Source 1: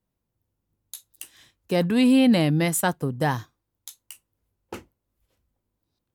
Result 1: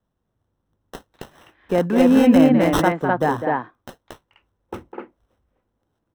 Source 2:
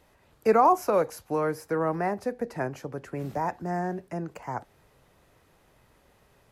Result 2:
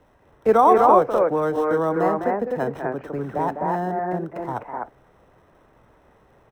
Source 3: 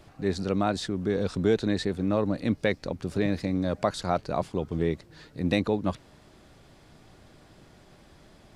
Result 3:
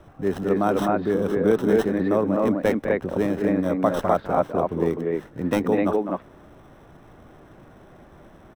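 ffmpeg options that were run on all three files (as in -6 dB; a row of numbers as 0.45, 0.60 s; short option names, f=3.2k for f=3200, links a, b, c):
-filter_complex "[0:a]acrossover=split=200|2100[a][b][c];[a]acompressor=threshold=-40dB:ratio=6[d];[b]aecho=1:1:204.1|253.6:0.447|0.891[e];[c]acrusher=samples=19:mix=1:aa=0.000001[f];[d][e][f]amix=inputs=3:normalize=0,volume=4.5dB"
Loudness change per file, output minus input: +4.5, +7.0, +5.5 LU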